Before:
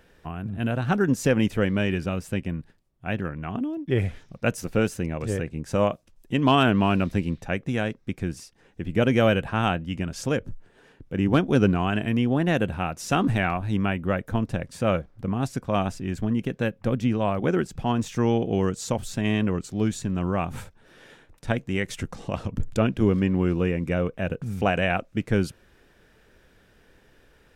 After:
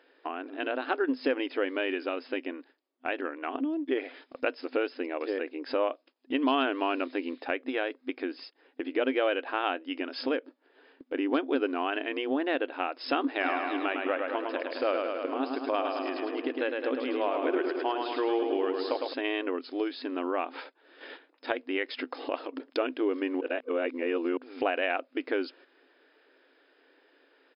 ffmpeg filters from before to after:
ffmpeg -i in.wav -filter_complex "[0:a]asplit=3[link_01][link_02][link_03];[link_01]afade=type=out:start_time=13.4:duration=0.02[link_04];[link_02]aecho=1:1:106|212|318|424|530|636|742|848:0.562|0.332|0.196|0.115|0.0681|0.0402|0.0237|0.014,afade=type=in:start_time=13.4:duration=0.02,afade=type=out:start_time=19.12:duration=0.02[link_05];[link_03]afade=type=in:start_time=19.12:duration=0.02[link_06];[link_04][link_05][link_06]amix=inputs=3:normalize=0,asplit=3[link_07][link_08][link_09];[link_07]atrim=end=23.412[link_10];[link_08]atrim=start=23.408:end=24.372,asetpts=PTS-STARTPTS,areverse[link_11];[link_09]atrim=start=24.368[link_12];[link_10][link_11]acrossfade=duration=0.004:curve1=hsin:curve2=hsin[link_13];[link_13][link_12]acrossfade=duration=0.004:curve1=hsin:curve2=hsin,afftfilt=real='re*between(b*sr/4096,250,5200)':imag='im*between(b*sr/4096,250,5200)':win_size=4096:overlap=0.75,agate=range=-9dB:threshold=-51dB:ratio=16:detection=peak,acompressor=threshold=-39dB:ratio=2,volume=6dB" out.wav

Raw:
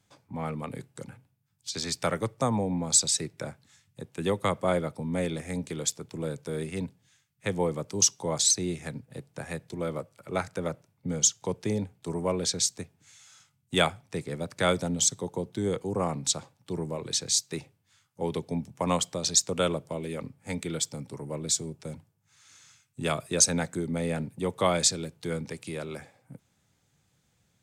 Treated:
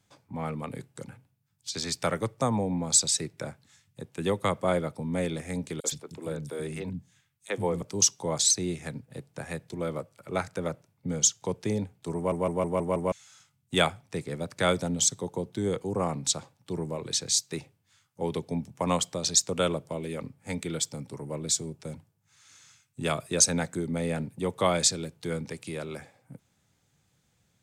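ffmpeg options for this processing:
ffmpeg -i in.wav -filter_complex "[0:a]asettb=1/sr,asplit=3[link_01][link_02][link_03];[link_01]atrim=end=5.804[link_04];[link_02]atrim=start=5.8:end=7.82,asetpts=PTS-STARTPTS,afade=type=in:duration=0.004:curve=qsin,afade=type=out:start_time=2.016:duration=0.004:curve=qsin,acrossover=split=250|4600[link_05][link_06][link_07];[link_06]adelay=40[link_08];[link_05]adelay=120[link_09];[link_09][link_08][link_07]amix=inputs=3:normalize=0,atrim=end_sample=89082[link_10];[link_03]atrim=start=7.816[link_11];[link_04][link_10]acrossfade=duration=0.004:curve1=hsin:curve2=qsin[link_12];[link_12][link_11]acrossfade=duration=0.004:curve1=qsin:curve2=hsin,asplit=7[link_13][link_14][link_15][link_16][link_17][link_18][link_19];[link_13]atrim=end=12.322[link_20];[link_14]atrim=start=12.158:end=12.322[link_21];[link_15]atrim=start=12.158:end=12.322[link_22];[link_16]atrim=start=12.158:end=12.322[link_23];[link_17]atrim=start=12.158:end=12.322[link_24];[link_18]atrim=start=12.158:end=12.322[link_25];[link_19]atrim=start=13.118[link_26];[link_20][link_21]acrossfade=duration=0.004:curve1=hsin:curve2=hsin[link_27];[link_27][link_22]acrossfade=duration=0.004:curve1=hsin:curve2=hsin[link_28];[link_28][link_23]acrossfade=duration=0.004:curve1=hsin:curve2=hsin[link_29];[link_29][link_24]acrossfade=duration=0.004:curve1=hsin:curve2=hsin[link_30];[link_30][link_25]acrossfade=duration=0.004:curve1=hsin:curve2=hsin[link_31];[link_31][link_26]acrossfade=duration=0.004:curve1=hsin:curve2=hsin" out.wav

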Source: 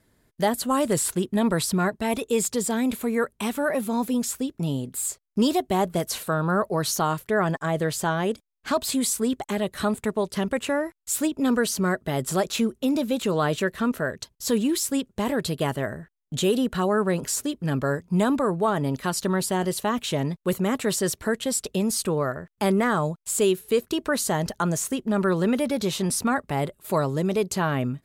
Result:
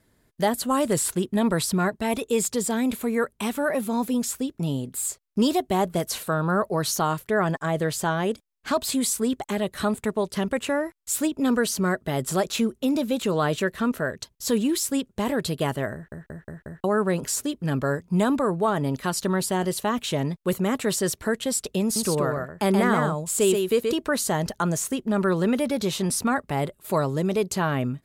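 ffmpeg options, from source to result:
ffmpeg -i in.wav -filter_complex "[0:a]asettb=1/sr,asplit=3[link_01][link_02][link_03];[link_01]atrim=end=21.834[link_04];[link_02]atrim=start=21.83:end=23.95,asetpts=PTS-STARTPTS,afade=type=in:duration=0.004:curve=qsin,afade=type=out:start_time=2.116:duration=0.004:curve=qsin,aecho=1:1:128:0.596,atrim=end_sample=93492[link_05];[link_03]atrim=start=23.946[link_06];[link_04][link_05]acrossfade=duration=0.004:curve1=hsin:curve2=qsin[link_07];[link_07][link_06]acrossfade=duration=0.004:curve1=qsin:curve2=hsin,asplit=6[link_08][link_09][link_10][link_11][link_12][link_13];[link_08]atrim=end=16.122[link_14];[link_09]atrim=start=15.938:end=16.122[link_15];[link_10]atrim=start=15.938:end=16.122[link_16];[link_11]atrim=start=15.938:end=16.122[link_17];[link_12]atrim=start=15.938:end=16.122[link_18];[link_13]atrim=start=16.838[link_19];[link_14][link_15]acrossfade=duration=0.004:curve1=hsin:curve2=hsin[link_20];[link_20][link_16]acrossfade=duration=0.004:curve1=hsin:curve2=hsin[link_21];[link_21][link_17]acrossfade=duration=0.004:curve1=hsin:curve2=hsin[link_22];[link_22][link_18]acrossfade=duration=0.004:curve1=hsin:curve2=hsin[link_23];[link_23][link_19]acrossfade=duration=0.004:curve1=hsin:curve2=hsin" out.wav

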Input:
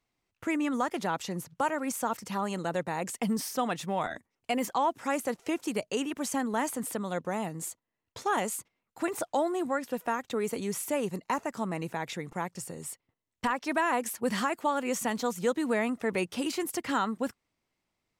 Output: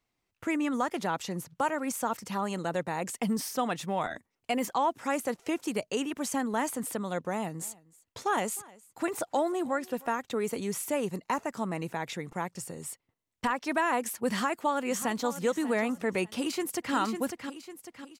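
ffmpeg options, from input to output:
ffmpeg -i in.wav -filter_complex "[0:a]asettb=1/sr,asplit=3[link_01][link_02][link_03];[link_01]atrim=end=7.304[link_04];[link_02]atrim=start=7.3:end=10.08,asetpts=PTS-STARTPTS,afade=type=in:duration=0.004:curve=qsin,afade=type=out:start_time=2.776:duration=0.004:curve=qsin,aecho=1:1:309:0.0708,atrim=end_sample=122598[link_05];[link_03]atrim=start=10.076[link_06];[link_04][link_05]acrossfade=duration=0.004:curve1=hsin:curve2=qsin[link_07];[link_07][link_06]acrossfade=duration=0.004:curve1=qsin:curve2=hsin,asplit=2[link_08][link_09];[link_09]afade=type=in:start_time=14.31:duration=0.01,afade=type=out:start_time=15.44:duration=0.01,aecho=0:1:590|1180|1770:0.211349|0.0528372|0.0132093[link_10];[link_08][link_10]amix=inputs=2:normalize=0,asplit=2[link_11][link_12];[link_12]afade=type=in:start_time=16.37:duration=0.01,afade=type=out:start_time=16.94:duration=0.01,aecho=0:1:550|1100|1650|2200|2750:0.473151|0.212918|0.0958131|0.0431159|0.0194022[link_13];[link_11][link_13]amix=inputs=2:normalize=0" out.wav

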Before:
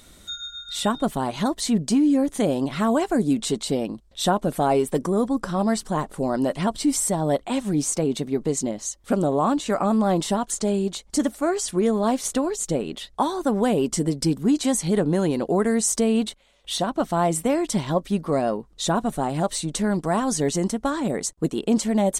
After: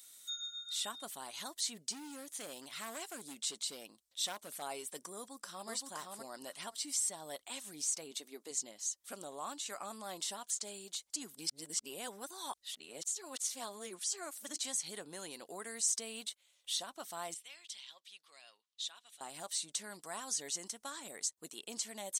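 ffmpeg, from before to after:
ffmpeg -i in.wav -filter_complex "[0:a]asettb=1/sr,asplit=3[link_01][link_02][link_03];[link_01]atrim=end=1.834[link_04];[link_02]atrim=start=1.83:end=4.62,asetpts=PTS-STARTPTS,afade=type=in:duration=0.004:curve=qsin,afade=type=out:start_time=2.786:duration=0.004:curve=qsin,asoftclip=type=hard:threshold=-16.5dB[link_05];[link_03]atrim=start=4.616[link_06];[link_04][link_05]acrossfade=duration=0.004:curve1=hsin:curve2=qsin[link_07];[link_07][link_06]acrossfade=duration=0.004:curve1=qsin:curve2=hsin,asplit=2[link_08][link_09];[link_09]afade=type=in:start_time=5.15:duration=0.01,afade=type=out:start_time=5.7:duration=0.01,aecho=0:1:520|1040|1560:0.707946|0.106192|0.0159288[link_10];[link_08][link_10]amix=inputs=2:normalize=0,asettb=1/sr,asplit=3[link_11][link_12][link_13];[link_11]atrim=end=8.114[link_14];[link_12]atrim=start=8.11:end=8.51,asetpts=PTS-STARTPTS,afade=type=in:duration=0.004:curve=qsin,afade=type=out:start_time=0.396:duration=0.004:curve=qsin,lowshelf=frequency=190:width_type=q:width=1.5:gain=-13.5[link_15];[link_13]atrim=start=8.506[link_16];[link_14][link_15]acrossfade=duration=0.004:curve1=hsin:curve2=qsin[link_17];[link_17][link_16]acrossfade=duration=0.004:curve1=qsin:curve2=hsin,asettb=1/sr,asplit=3[link_18][link_19][link_20];[link_18]atrim=end=17.344[link_21];[link_19]atrim=start=17.34:end=19.21,asetpts=PTS-STARTPTS,afade=type=in:duration=0.004:curve=qsin,afade=type=out:start_time=1.866:duration=0.004:curve=qsin,bandpass=frequency=3200:width_type=q:width=2[link_22];[link_20]atrim=start=19.206[link_23];[link_21][link_22]acrossfade=duration=0.004:curve1=hsin:curve2=qsin[link_24];[link_24][link_23]acrossfade=duration=0.004:curve1=qsin:curve2=hsin,asplit=3[link_25][link_26][link_27];[link_25]atrim=end=11.162[link_28];[link_26]atrim=start=11.158:end=14.562,asetpts=PTS-STARTPTS,areverse[link_29];[link_27]atrim=start=14.558[link_30];[link_28][link_29]acrossfade=duration=0.004:curve1=hsin:curve2=hsin[link_31];[link_31][link_30]acrossfade=duration=0.004:curve1=hsin:curve2=hsin,acrossover=split=7000[link_32][link_33];[link_33]acompressor=threshold=-45dB:ratio=4:attack=1:release=60[link_34];[link_32][link_34]amix=inputs=2:normalize=0,aderivative,volume=-2.5dB" out.wav

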